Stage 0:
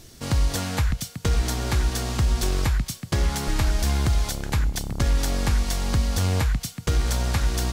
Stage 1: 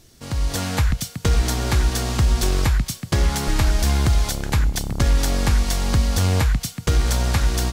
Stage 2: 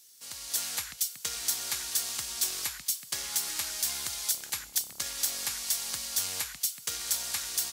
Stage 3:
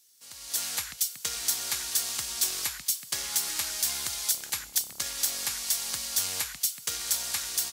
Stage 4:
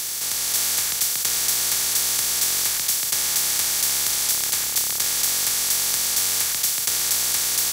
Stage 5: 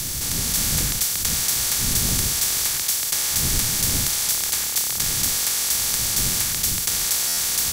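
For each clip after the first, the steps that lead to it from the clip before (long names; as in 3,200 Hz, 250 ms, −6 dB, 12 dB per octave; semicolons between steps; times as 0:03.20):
automatic gain control gain up to 9.5 dB; level −5 dB
first difference
automatic gain control gain up to 8 dB; level −5.5 dB
compressor on every frequency bin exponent 0.2
wind on the microphone 140 Hz −32 dBFS; buffer that repeats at 0:07.27, samples 512; MP3 192 kbit/s 44,100 Hz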